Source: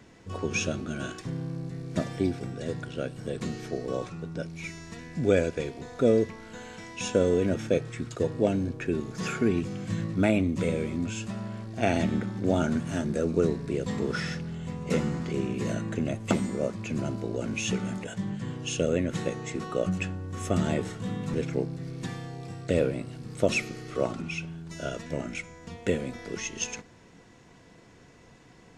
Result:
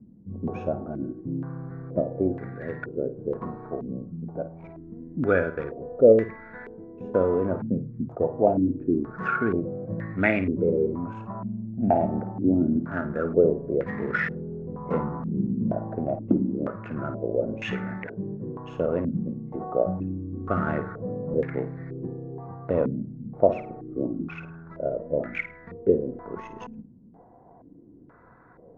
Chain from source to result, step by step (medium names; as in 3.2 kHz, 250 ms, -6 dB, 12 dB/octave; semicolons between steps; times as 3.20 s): local Wiener filter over 15 samples; bass shelf 490 Hz -5 dB; flutter echo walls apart 9.1 m, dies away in 0.28 s; step-sequenced low-pass 2.1 Hz 220–1900 Hz; trim +2 dB